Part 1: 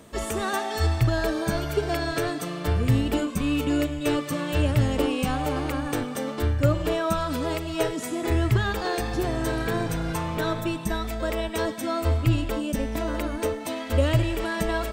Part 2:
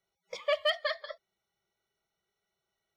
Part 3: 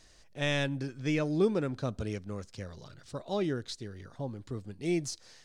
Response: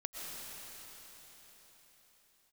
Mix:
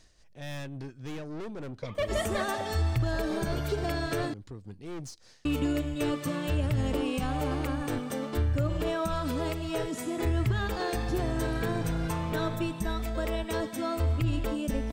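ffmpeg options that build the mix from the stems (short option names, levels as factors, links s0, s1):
-filter_complex "[0:a]adelay=1950,volume=0.562,asplit=3[s0][s1][s2];[s0]atrim=end=4.34,asetpts=PTS-STARTPTS,afade=t=out:st=4.336:d=0.004:c=hsin[s3];[s1]atrim=start=4.34:end=5.45,asetpts=PTS-STARTPTS,volume=0[s4];[s2]atrim=start=5.45,asetpts=PTS-STARTPTS,afade=t=in:d=0.004:c=hsin[s5];[s3][s4][s5]concat=n=3:v=0:a=1[s6];[1:a]lowpass=f=1200:p=1,asoftclip=type=hard:threshold=0.0335,adelay=1500,volume=1.41[s7];[2:a]acontrast=58,tremolo=f=3.6:d=0.54,aeval=exprs='(tanh(39.8*val(0)+0.4)-tanh(0.4))/39.8':c=same,volume=0.501[s8];[s6][s7][s8]amix=inputs=3:normalize=0,lowshelf=f=240:g=4.5,alimiter=limit=0.106:level=0:latency=1:release=53"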